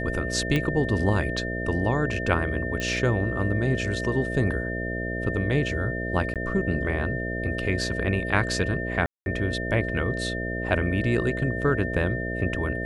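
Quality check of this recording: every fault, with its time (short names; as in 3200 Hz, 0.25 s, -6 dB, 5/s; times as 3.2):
buzz 60 Hz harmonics 11 -31 dBFS
tone 1800 Hz -32 dBFS
0.56 pop -12 dBFS
2.8 pop -16 dBFS
6.34–6.36 gap 17 ms
9.06–9.26 gap 0.201 s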